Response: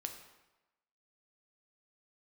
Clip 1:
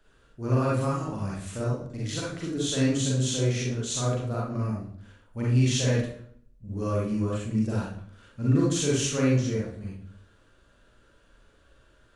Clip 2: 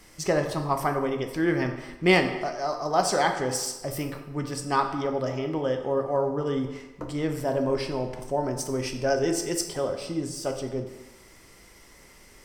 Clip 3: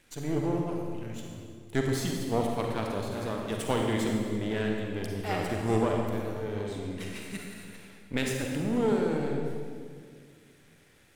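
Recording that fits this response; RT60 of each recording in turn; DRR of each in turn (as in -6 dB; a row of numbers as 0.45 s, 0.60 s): 2; 0.60 s, 1.0 s, 2.0 s; -6.5 dB, 4.5 dB, 0.5 dB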